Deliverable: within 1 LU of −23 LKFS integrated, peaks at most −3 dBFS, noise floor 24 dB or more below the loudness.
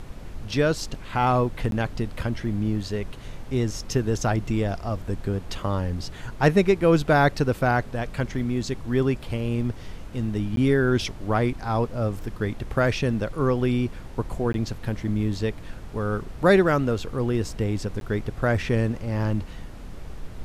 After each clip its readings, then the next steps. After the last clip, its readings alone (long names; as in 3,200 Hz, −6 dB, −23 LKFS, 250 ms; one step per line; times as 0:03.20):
number of dropouts 4; longest dropout 12 ms; background noise floor −39 dBFS; target noise floor −49 dBFS; integrated loudness −25.0 LKFS; sample peak −5.5 dBFS; target loudness −23.0 LKFS
→ repair the gap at 0:01.71/0:10.56/0:14.53/0:18.00, 12 ms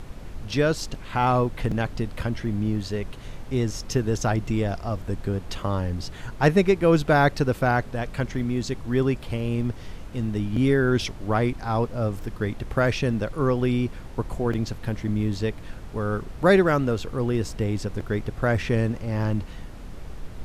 number of dropouts 0; background noise floor −39 dBFS; target noise floor −49 dBFS
→ noise reduction from a noise print 10 dB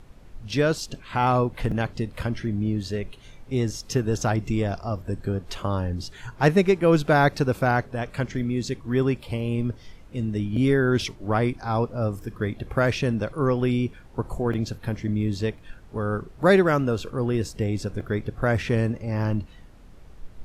background noise floor −47 dBFS; target noise floor −49 dBFS
→ noise reduction from a noise print 6 dB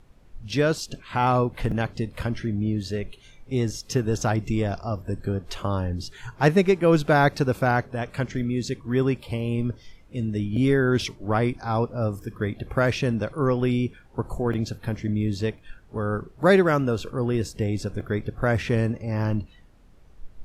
background noise floor −52 dBFS; integrated loudness −25.0 LKFS; sample peak −6.0 dBFS; target loudness −23.0 LKFS
→ level +2 dB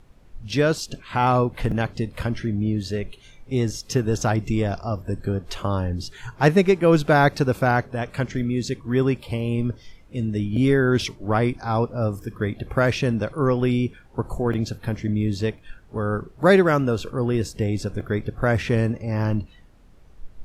integrated loudness −23.0 LKFS; sample peak −4.0 dBFS; background noise floor −50 dBFS